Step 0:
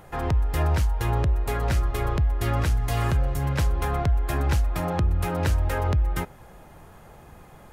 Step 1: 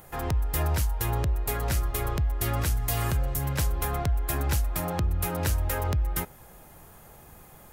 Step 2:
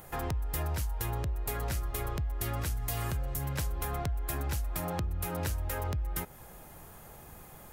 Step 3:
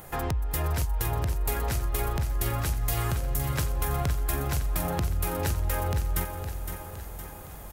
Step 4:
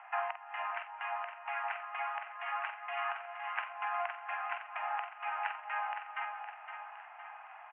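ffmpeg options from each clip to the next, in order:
-af "aemphasis=mode=production:type=50fm,volume=0.668"
-af "acompressor=threshold=0.0251:ratio=3"
-af "aecho=1:1:513|1026|1539|2052|2565|3078:0.398|0.215|0.116|0.0627|0.0339|0.0183,volume=1.68"
-filter_complex "[0:a]asuperpass=centerf=1400:order=20:qfactor=0.65,asplit=2[s0][s1];[s1]adelay=49,volume=0.335[s2];[s0][s2]amix=inputs=2:normalize=0"

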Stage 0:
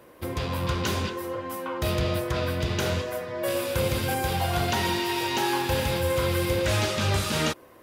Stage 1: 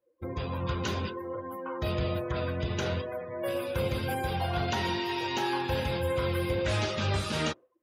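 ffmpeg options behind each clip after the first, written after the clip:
-af "afftdn=nr=32:nf=-37,volume=0.631"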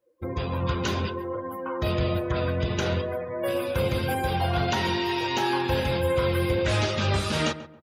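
-filter_complex "[0:a]asplit=2[s0][s1];[s1]adelay=137,lowpass=f=1400:p=1,volume=0.224,asplit=2[s2][s3];[s3]adelay=137,lowpass=f=1400:p=1,volume=0.32,asplit=2[s4][s5];[s5]adelay=137,lowpass=f=1400:p=1,volume=0.32[s6];[s0][s2][s4][s6]amix=inputs=4:normalize=0,volume=1.68"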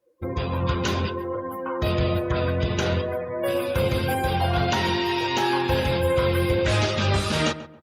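-af "volume=1.33" -ar 48000 -c:a libopus -b:a 64k

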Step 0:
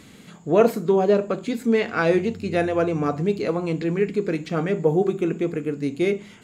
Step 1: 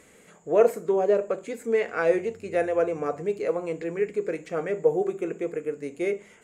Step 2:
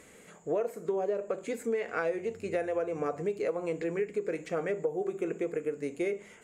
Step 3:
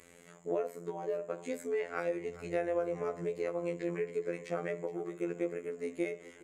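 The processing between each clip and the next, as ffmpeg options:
-af "equalizer=f=125:t=o:w=1:g=-7,equalizer=f=250:t=o:w=1:g=-6,equalizer=f=500:t=o:w=1:g=10,equalizer=f=2000:t=o:w=1:g=6,equalizer=f=4000:t=o:w=1:g=-9,equalizer=f=8000:t=o:w=1:g=9,volume=0.376"
-af "acompressor=threshold=0.0447:ratio=12"
-af "afftfilt=real='hypot(re,im)*cos(PI*b)':imag='0':win_size=2048:overlap=0.75,aecho=1:1:417|834|1251|1668|2085:0.141|0.0791|0.0443|0.0248|0.0139"

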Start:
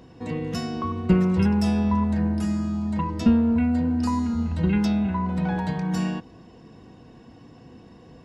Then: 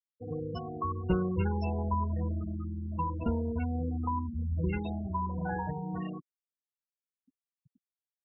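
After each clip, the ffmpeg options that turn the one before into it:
-af "lowpass=f=4500:w=0.5412,lowpass=f=4500:w=1.3066,afftfilt=real='re*gte(hypot(re,im),0.0631)':imag='im*gte(hypot(re,im),0.0631)':win_size=1024:overlap=0.75,equalizer=f=220:t=o:w=0.76:g=-14,volume=0.75"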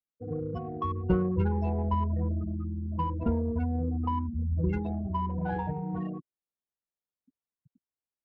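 -af "adynamicsmooth=sensitivity=1.5:basefreq=1300,volume=1.41"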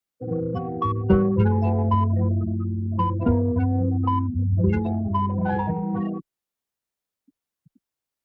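-af "afreqshift=14,volume=2.37"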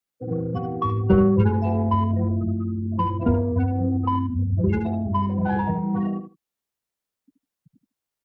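-af "aecho=1:1:76|152:0.376|0.0601"

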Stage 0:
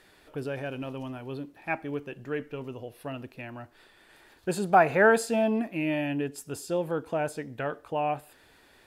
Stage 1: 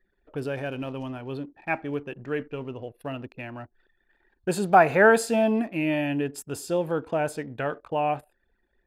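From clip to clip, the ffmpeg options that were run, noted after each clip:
-af "anlmdn=0.00398,volume=1.41"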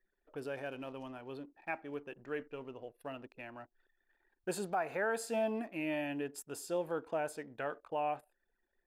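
-af "equalizer=f=82:t=o:w=2.9:g=-13.5,alimiter=limit=0.133:level=0:latency=1:release=326,equalizer=f=3100:t=o:w=1.6:g=-3,volume=0.447"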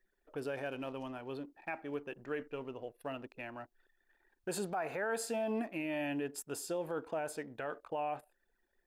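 -af "alimiter=level_in=2.24:limit=0.0631:level=0:latency=1:release=45,volume=0.447,volume=1.41"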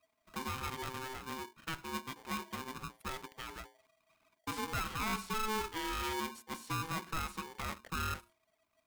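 -filter_complex "[0:a]bandreject=f=60:t=h:w=6,bandreject=f=120:t=h:w=6,bandreject=f=180:t=h:w=6,bandreject=f=240:t=h:w=6,bandreject=f=300:t=h:w=6,bandreject=f=360:t=h:w=6,bandreject=f=420:t=h:w=6,acrossover=split=4000[s0][s1];[s1]acompressor=threshold=0.00224:ratio=4:attack=1:release=60[s2];[s0][s2]amix=inputs=2:normalize=0,aeval=exprs='val(0)*sgn(sin(2*PI*650*n/s))':c=same"

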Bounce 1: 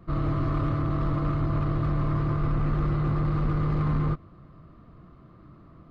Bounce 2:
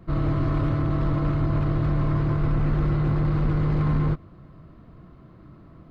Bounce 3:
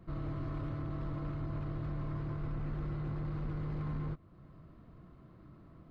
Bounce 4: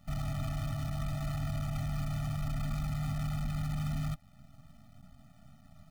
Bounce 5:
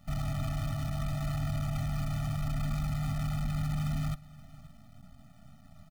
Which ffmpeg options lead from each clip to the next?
-af "bandreject=f=1200:w=8.2,volume=1.41"
-af "acompressor=threshold=0.01:ratio=1.5,volume=0.398"
-af "acrusher=bits=8:dc=4:mix=0:aa=0.000001,afftfilt=real='re*eq(mod(floor(b*sr/1024/290),2),0)':imag='im*eq(mod(floor(b*sr/1024/290),2),0)':win_size=1024:overlap=0.75,volume=1.58"
-af "aecho=1:1:526:0.0944,volume=1.26"

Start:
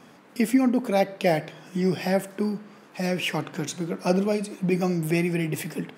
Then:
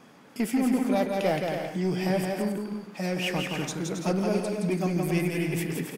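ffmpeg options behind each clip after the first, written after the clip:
-af "asoftclip=type=tanh:threshold=0.15,aecho=1:1:170|272|333.2|369.9|392:0.631|0.398|0.251|0.158|0.1,volume=0.75"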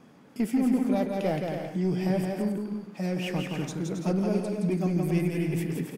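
-af "lowshelf=f=470:g=9,volume=0.473"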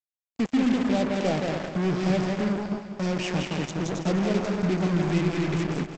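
-af "aresample=16000,acrusher=bits=4:mix=0:aa=0.5,aresample=44100,aecho=1:1:195|390|585|780|975|1170|1365:0.282|0.163|0.0948|0.055|0.0319|0.0185|0.0107,volume=1.19"

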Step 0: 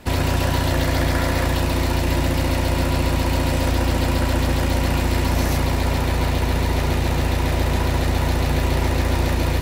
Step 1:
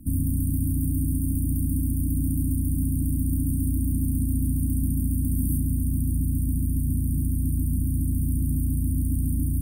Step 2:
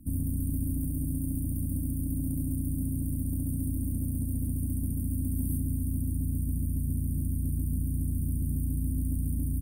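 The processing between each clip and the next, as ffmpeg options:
-filter_complex "[0:a]afftfilt=real='re*(1-between(b*sr/4096,320,8400))':imag='im*(1-between(b*sr/4096,320,8400))':win_size=4096:overlap=0.75,acrossover=split=320|570|2100[s0][s1][s2][s3];[s0]alimiter=limit=0.0944:level=0:latency=1:release=35[s4];[s4][s1][s2][s3]amix=inputs=4:normalize=0,volume=1.19"
-af "aeval=exprs='0.188*(cos(1*acos(clip(val(0)/0.188,-1,1)))-cos(1*PI/2))+0.0075*(cos(4*acos(clip(val(0)/0.188,-1,1)))-cos(4*PI/2))':c=same,aecho=1:1:367:0.251,volume=0.501"

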